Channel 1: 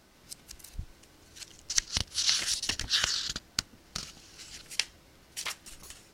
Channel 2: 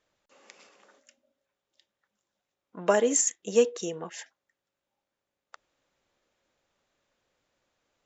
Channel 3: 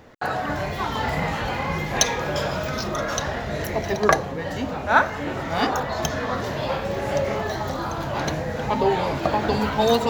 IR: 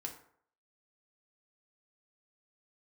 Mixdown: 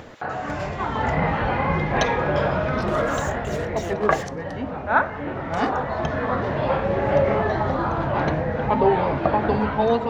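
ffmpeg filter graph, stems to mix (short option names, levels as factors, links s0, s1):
-filter_complex "[0:a]adelay=2500,volume=0.133[s0];[1:a]acompressor=threshold=0.0282:ratio=6,asplit=2[s1][s2];[s2]highpass=f=720:p=1,volume=44.7,asoftclip=type=tanh:threshold=0.1[s3];[s1][s3]amix=inputs=2:normalize=0,lowpass=f=2300:p=1,volume=0.501,volume=0.447,asplit=3[s4][s5][s6];[s5]volume=0.355[s7];[2:a]lowpass=2000,dynaudnorm=f=400:g=5:m=2.82,volume=0.708[s8];[s6]apad=whole_len=380639[s9];[s0][s9]sidechaingate=range=0.0224:threshold=0.00141:ratio=16:detection=peak[s10];[3:a]atrim=start_sample=2205[s11];[s7][s11]afir=irnorm=-1:irlink=0[s12];[s10][s4][s8][s12]amix=inputs=4:normalize=0,acompressor=mode=upward:threshold=0.0251:ratio=2.5"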